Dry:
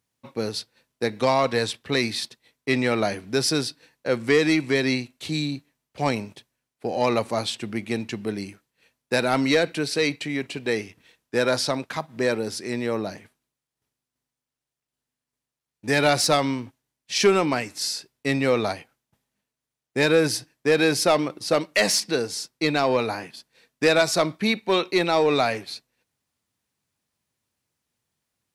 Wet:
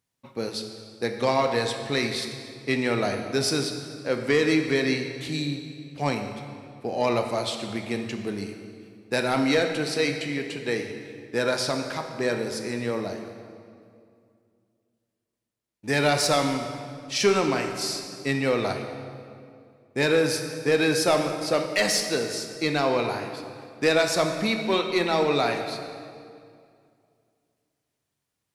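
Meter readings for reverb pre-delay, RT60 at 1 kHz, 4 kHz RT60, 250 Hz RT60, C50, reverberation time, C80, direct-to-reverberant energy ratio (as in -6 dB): 14 ms, 2.2 s, 1.7 s, 2.7 s, 6.0 dB, 2.3 s, 7.5 dB, 4.5 dB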